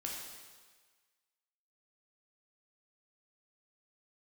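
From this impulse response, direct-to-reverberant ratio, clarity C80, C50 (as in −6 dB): −2.5 dB, 3.0 dB, 1.0 dB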